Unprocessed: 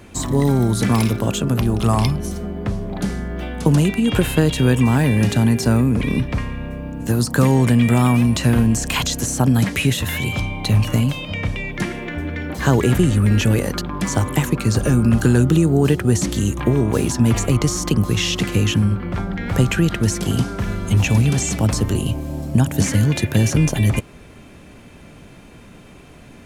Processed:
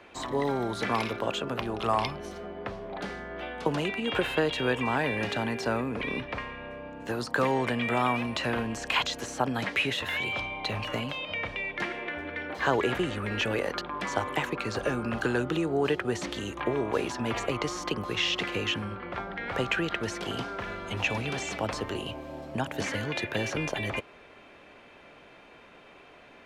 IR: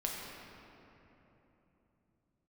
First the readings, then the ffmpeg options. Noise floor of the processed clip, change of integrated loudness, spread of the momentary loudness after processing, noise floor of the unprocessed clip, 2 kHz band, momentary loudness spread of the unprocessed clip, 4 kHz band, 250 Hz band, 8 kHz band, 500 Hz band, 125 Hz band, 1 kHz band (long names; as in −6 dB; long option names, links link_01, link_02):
−53 dBFS, −12.0 dB, 9 LU, −43 dBFS, −3.5 dB, 10 LU, −6.0 dB, −15.0 dB, −17.0 dB, −6.5 dB, −21.0 dB, −3.5 dB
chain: -filter_complex "[0:a]acrossover=split=390 4200:gain=0.112 1 0.1[link_01][link_02][link_03];[link_01][link_02][link_03]amix=inputs=3:normalize=0,volume=-3dB"